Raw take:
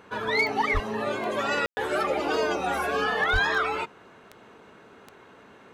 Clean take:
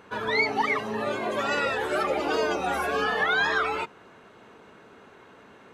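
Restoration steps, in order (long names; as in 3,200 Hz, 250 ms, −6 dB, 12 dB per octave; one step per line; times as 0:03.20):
clipped peaks rebuilt −16.5 dBFS
click removal
0:00.73–0:00.85: high-pass filter 140 Hz 24 dB per octave
0:03.32–0:03.44: high-pass filter 140 Hz 24 dB per octave
ambience match 0:01.66–0:01.77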